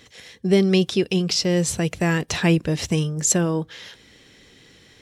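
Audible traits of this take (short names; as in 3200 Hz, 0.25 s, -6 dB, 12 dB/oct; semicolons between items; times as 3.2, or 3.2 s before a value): noise floor -53 dBFS; spectral tilt -4.5 dB/oct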